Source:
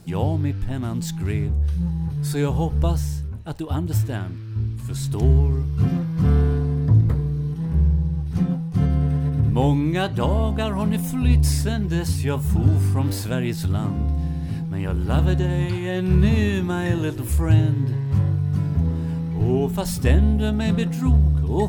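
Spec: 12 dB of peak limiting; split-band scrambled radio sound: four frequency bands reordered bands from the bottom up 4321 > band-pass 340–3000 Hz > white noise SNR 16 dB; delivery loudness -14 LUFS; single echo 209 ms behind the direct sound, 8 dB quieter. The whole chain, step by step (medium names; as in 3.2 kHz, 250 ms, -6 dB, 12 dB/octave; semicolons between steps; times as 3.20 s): peak limiter -17 dBFS; delay 209 ms -8 dB; four frequency bands reordered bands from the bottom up 4321; band-pass 340–3000 Hz; white noise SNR 16 dB; trim +14.5 dB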